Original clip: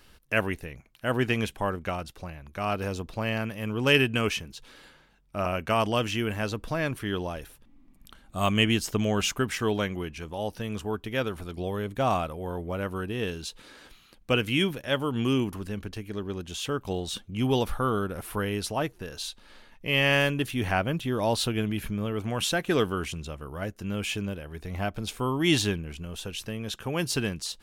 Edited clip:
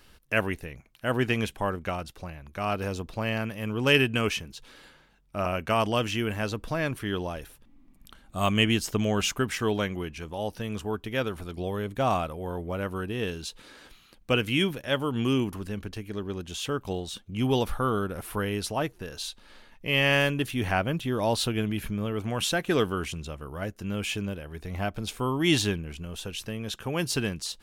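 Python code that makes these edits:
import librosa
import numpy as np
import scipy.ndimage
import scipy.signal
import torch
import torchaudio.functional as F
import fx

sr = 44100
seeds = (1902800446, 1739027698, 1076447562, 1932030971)

y = fx.edit(x, sr, fx.fade_out_to(start_s=16.75, length_s=0.51, curve='qsin', floor_db=-8.0), tone=tone)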